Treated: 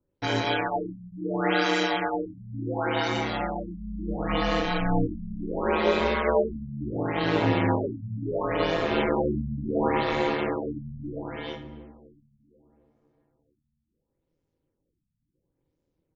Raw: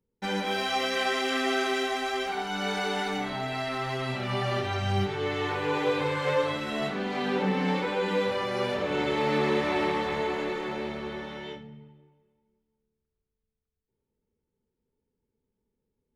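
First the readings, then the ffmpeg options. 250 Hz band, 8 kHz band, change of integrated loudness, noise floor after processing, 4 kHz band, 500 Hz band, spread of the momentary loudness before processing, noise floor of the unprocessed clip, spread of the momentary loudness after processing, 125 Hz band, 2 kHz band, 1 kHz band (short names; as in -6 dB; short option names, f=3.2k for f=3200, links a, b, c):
+3.5 dB, n/a, +1.5 dB, -79 dBFS, -1.5 dB, +1.5 dB, 6 LU, -84 dBFS, 12 LU, +2.5 dB, -0.5 dB, +1.0 dB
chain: -filter_complex "[0:a]aeval=exprs='val(0)*sin(2*PI*80*n/s)':c=same,asplit=2[a][b];[b]adelay=1002,lowpass=f=950:p=1,volume=-21.5dB,asplit=2[c][d];[d]adelay=1002,lowpass=f=950:p=1,volume=0.25[e];[a][c][e]amix=inputs=3:normalize=0,afftfilt=real='re*lt(b*sr/1024,230*pow(7800/230,0.5+0.5*sin(2*PI*0.71*pts/sr)))':imag='im*lt(b*sr/1024,230*pow(7800/230,0.5+0.5*sin(2*PI*0.71*pts/sr)))':win_size=1024:overlap=0.75,volume=6.5dB"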